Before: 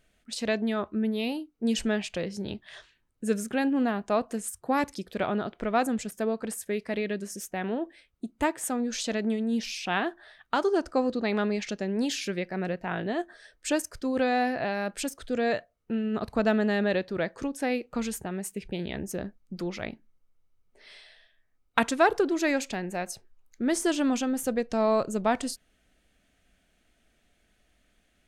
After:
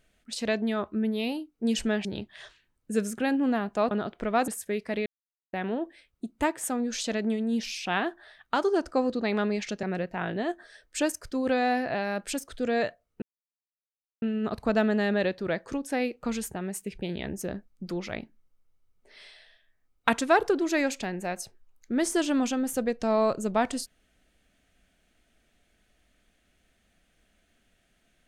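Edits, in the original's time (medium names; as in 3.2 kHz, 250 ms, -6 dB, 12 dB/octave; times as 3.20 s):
2.05–2.38 s: delete
4.24–5.31 s: delete
5.88–6.48 s: delete
7.06–7.53 s: mute
11.83–12.53 s: delete
15.92 s: insert silence 1.00 s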